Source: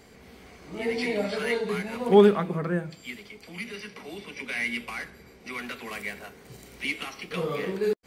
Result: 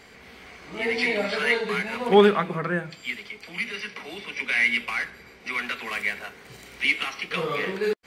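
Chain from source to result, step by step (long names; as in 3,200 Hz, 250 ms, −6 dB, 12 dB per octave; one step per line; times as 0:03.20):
parametric band 2,100 Hz +10.5 dB 2.9 octaves
level −2 dB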